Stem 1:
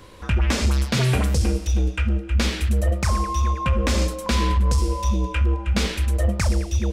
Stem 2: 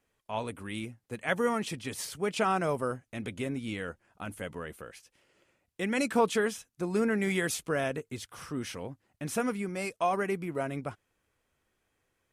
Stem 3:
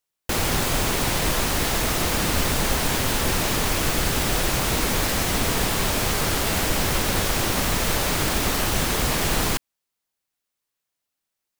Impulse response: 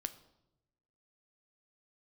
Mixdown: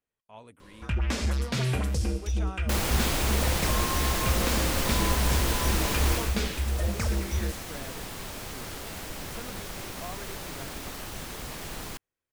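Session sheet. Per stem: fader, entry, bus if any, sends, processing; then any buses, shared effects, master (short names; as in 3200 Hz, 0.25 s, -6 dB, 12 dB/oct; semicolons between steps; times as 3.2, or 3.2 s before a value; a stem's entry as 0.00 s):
-7.5 dB, 0.60 s, no send, dry
-14.0 dB, 0.00 s, no send, dry
6.15 s -5.5 dB -> 6.4 s -15.5 dB, 2.40 s, no send, dry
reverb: off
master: dry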